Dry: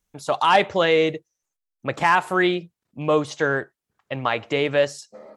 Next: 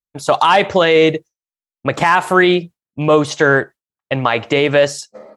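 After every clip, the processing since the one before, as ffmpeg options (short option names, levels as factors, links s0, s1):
-af "agate=range=0.0224:threshold=0.0141:ratio=3:detection=peak,alimiter=level_in=3.76:limit=0.891:release=50:level=0:latency=1,volume=0.891"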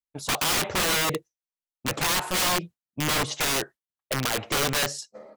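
-af "aeval=exprs='(mod(3.76*val(0)+1,2)-1)/3.76':c=same,volume=0.422"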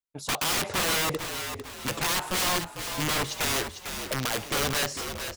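-filter_complex "[0:a]asplit=6[s0][s1][s2][s3][s4][s5];[s1]adelay=450,afreqshift=-54,volume=0.398[s6];[s2]adelay=900,afreqshift=-108,volume=0.172[s7];[s3]adelay=1350,afreqshift=-162,volume=0.0733[s8];[s4]adelay=1800,afreqshift=-216,volume=0.0316[s9];[s5]adelay=2250,afreqshift=-270,volume=0.0136[s10];[s0][s6][s7][s8][s9][s10]amix=inputs=6:normalize=0,volume=0.75"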